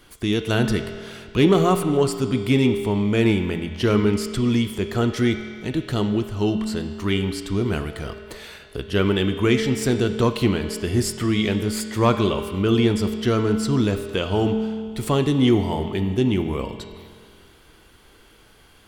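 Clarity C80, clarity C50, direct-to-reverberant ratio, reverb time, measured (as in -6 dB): 9.0 dB, 8.0 dB, 6.5 dB, 2.0 s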